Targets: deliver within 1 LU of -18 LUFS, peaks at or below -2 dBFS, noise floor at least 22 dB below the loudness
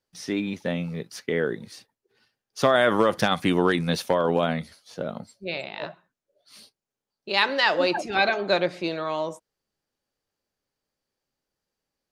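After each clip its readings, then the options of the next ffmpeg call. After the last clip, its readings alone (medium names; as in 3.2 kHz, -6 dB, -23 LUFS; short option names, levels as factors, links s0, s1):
loudness -24.5 LUFS; peak level -6.0 dBFS; loudness target -18.0 LUFS
-> -af "volume=2.11,alimiter=limit=0.794:level=0:latency=1"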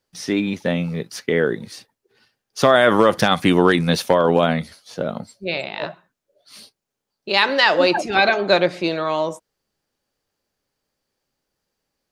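loudness -18.5 LUFS; peak level -2.0 dBFS; noise floor -81 dBFS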